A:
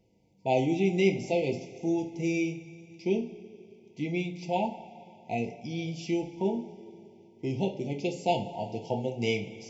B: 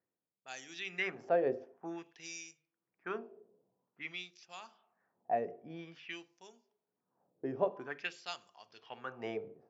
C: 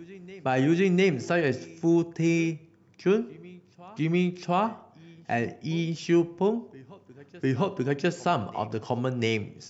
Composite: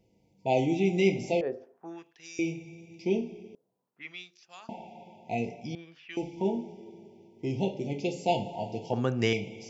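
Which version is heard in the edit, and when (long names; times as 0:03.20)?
A
0:01.41–0:02.39: punch in from B
0:03.55–0:04.69: punch in from B
0:05.75–0:06.17: punch in from B
0:08.93–0:09.33: punch in from C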